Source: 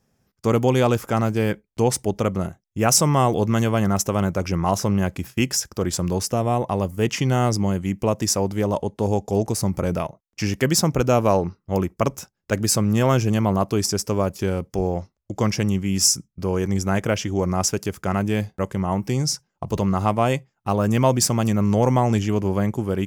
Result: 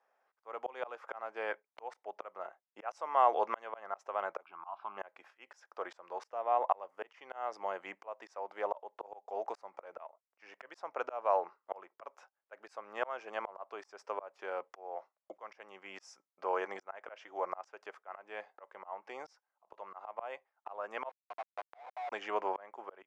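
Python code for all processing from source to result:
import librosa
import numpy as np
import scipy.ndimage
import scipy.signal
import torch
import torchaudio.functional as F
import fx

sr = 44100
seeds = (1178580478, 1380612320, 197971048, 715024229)

y = fx.chain(x, sr, fx.lowpass(hz=3400.0, slope=24),
    fx.fixed_phaser(hz=1900.0, stages=6), at=(4.43, 4.97))
y = fx.chain(y, sr, fx.formant_cascade(vowel='a'),
    fx.schmitt(flips_db=-37.0), at=(21.09, 22.12))
y = scipy.signal.sosfilt(scipy.signal.butter(4, 650.0, 'highpass', fs=sr, output='sos'), y)
y = fx.auto_swell(y, sr, attack_ms=599.0)
y = scipy.signal.sosfilt(scipy.signal.butter(2, 1500.0, 'lowpass', fs=sr, output='sos'), y)
y = y * librosa.db_to_amplitude(2.5)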